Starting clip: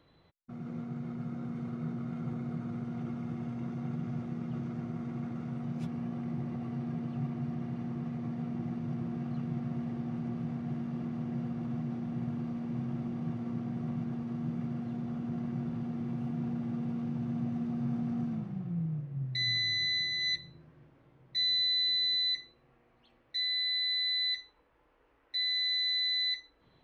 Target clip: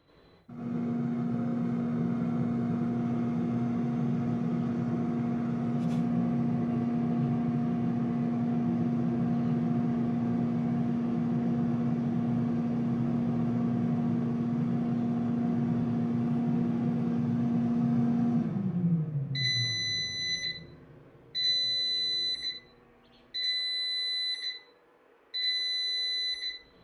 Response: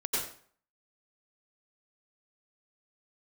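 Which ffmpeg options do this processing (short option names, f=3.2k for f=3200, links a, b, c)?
-filter_complex "[0:a]asettb=1/sr,asplit=3[a][b][c];[a]atrim=end=23.494[d];[b]atrim=start=23.49:end=25.82,asetpts=PTS-STARTPTS,afade=t=in:d=0.004:c=qsin,afade=t=out:st=2.326:d=0.004:c=qsin,highpass=140[e];[c]atrim=start=25.816[f];[d][e]acrossfade=d=0.004:c1=hsin:c2=qsin[g];[g][f]acrossfade=d=0.004:c1=qsin:c2=hsin[h];[1:a]atrim=start_sample=2205,asetrate=48510,aresample=44100[i];[h][i]afir=irnorm=-1:irlink=0,volume=1.5dB"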